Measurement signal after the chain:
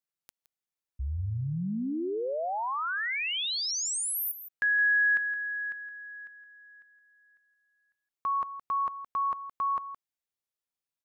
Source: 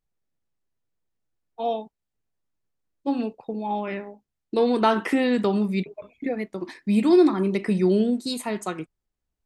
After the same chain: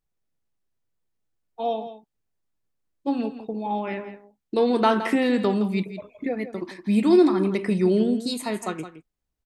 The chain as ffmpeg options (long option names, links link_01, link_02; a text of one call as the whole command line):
ffmpeg -i in.wav -af "aecho=1:1:167:0.251" out.wav